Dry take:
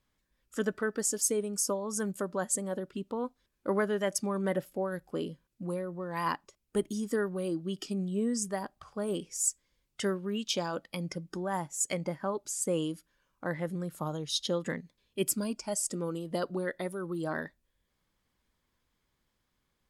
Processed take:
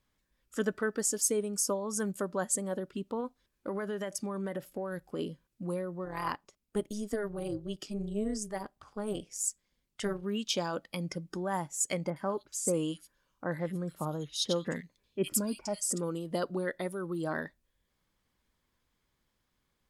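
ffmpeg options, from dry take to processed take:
-filter_complex "[0:a]asettb=1/sr,asplit=3[a][b][c];[a]atrim=end=3.204[d];[b]atrim=start=3.2:end=5.19,asetpts=PTS-STARTPTS,afade=t=in:d=0.004:c=qsin,afade=t=out:st=1.986:d=0.004:c=qsin,acompressor=threshold=-31dB:ratio=6:attack=3.2:release=140:knee=1:detection=peak[e];[c]atrim=start=5.186[f];[d][e]acrossfade=d=0.004:c1=hsin:c2=qsin[g];[g][f]acrossfade=d=0.004:c1=qsin:c2=hsin,asplit=3[h][i][j];[h]afade=t=out:st=6.04:d=0.02[k];[i]tremolo=f=210:d=0.71,afade=t=in:st=6.04:d=0.02,afade=t=out:st=10.22:d=0.02[l];[j]afade=t=in:st=10.22:d=0.02[m];[k][l][m]amix=inputs=3:normalize=0,asettb=1/sr,asplit=3[n][o][p];[n]atrim=end=12.104[q];[o]atrim=start=12.1:end=16.03,asetpts=PTS-STARTPTS,afade=t=in:d=0.004:c=qsin,afade=t=out:st=3.926:d=0.004:c=qsin,acrossover=split=2200[r][s];[s]adelay=60[t];[r][t]amix=inputs=2:normalize=0,atrim=end_sample=173313[u];[p]atrim=start=16.026[v];[q][u]acrossfade=d=0.004:c1=hsin:c2=qsin[w];[w][v]acrossfade=d=0.004:c1=qsin:c2=hsin"

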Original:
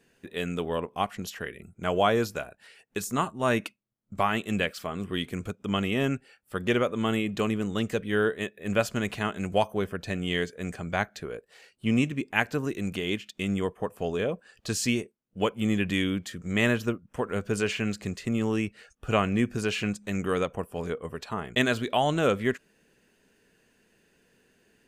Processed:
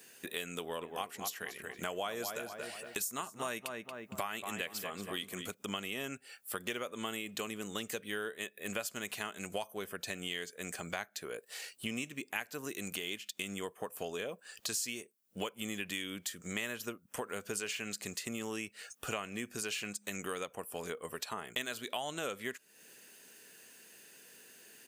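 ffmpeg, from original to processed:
-filter_complex "[0:a]asplit=3[a][b][c];[a]afade=t=out:st=0.8:d=0.02[d];[b]asplit=2[e][f];[f]adelay=231,lowpass=f=2k:p=1,volume=-8dB,asplit=2[g][h];[h]adelay=231,lowpass=f=2k:p=1,volume=0.3,asplit=2[i][j];[j]adelay=231,lowpass=f=2k:p=1,volume=0.3,asplit=2[k][l];[l]adelay=231,lowpass=f=2k:p=1,volume=0.3[m];[e][g][i][k][m]amix=inputs=5:normalize=0,afade=t=in:st=0.8:d=0.02,afade=t=out:st=5.53:d=0.02[n];[c]afade=t=in:st=5.53:d=0.02[o];[d][n][o]amix=inputs=3:normalize=0,highpass=f=450:p=1,aemphasis=mode=production:type=75kf,acompressor=threshold=-43dB:ratio=4,volume=4.5dB"

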